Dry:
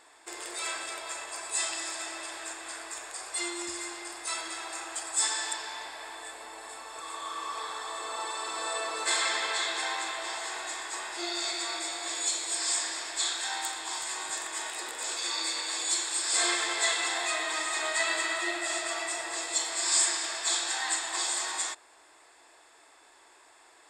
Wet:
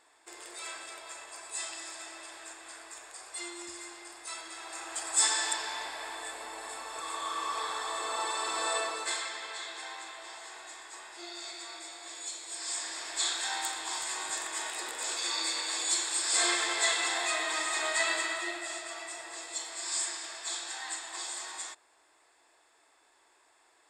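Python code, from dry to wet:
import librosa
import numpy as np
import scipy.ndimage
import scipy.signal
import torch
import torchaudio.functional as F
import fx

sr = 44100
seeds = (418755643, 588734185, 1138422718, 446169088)

y = fx.gain(x, sr, db=fx.line((4.49, -7.0), (5.19, 2.0), (8.77, 2.0), (9.3, -10.0), (12.43, -10.0), (13.25, -0.5), (18.07, -0.5), (18.85, -8.0)))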